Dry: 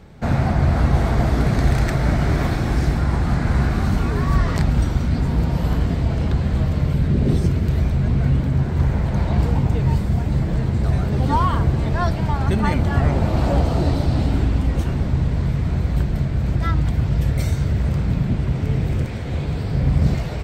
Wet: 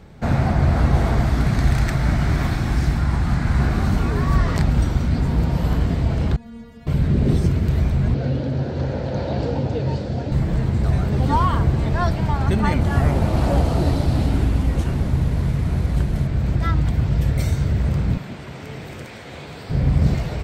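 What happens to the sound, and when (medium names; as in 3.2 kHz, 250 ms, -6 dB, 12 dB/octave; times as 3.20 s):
1.19–3.60 s: peaking EQ 470 Hz -6.5 dB 1.2 oct
6.36–6.87 s: inharmonic resonator 230 Hz, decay 0.46 s, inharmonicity 0.002
8.14–10.32 s: cabinet simulation 120–6300 Hz, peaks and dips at 180 Hz -9 dB, 270 Hz +3 dB, 530 Hz +10 dB, 1.1 kHz -8 dB, 2.1 kHz -6 dB, 4.4 kHz +4 dB
12.81–16.27 s: CVSD coder 64 kbps
18.17–19.70 s: high-pass 720 Hz 6 dB/octave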